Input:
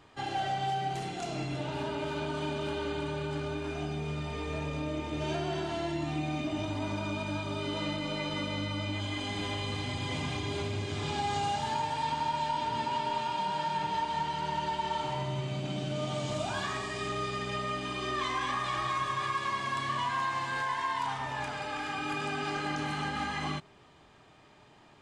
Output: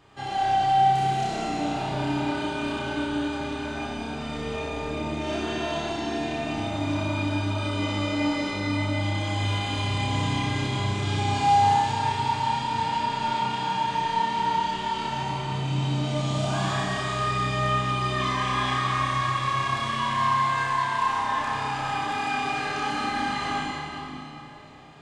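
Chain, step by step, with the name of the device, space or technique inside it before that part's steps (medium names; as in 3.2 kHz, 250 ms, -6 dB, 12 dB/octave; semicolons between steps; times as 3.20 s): tunnel (flutter echo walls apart 5.3 m, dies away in 0.51 s; reverberation RT60 3.6 s, pre-delay 67 ms, DRR -2 dB)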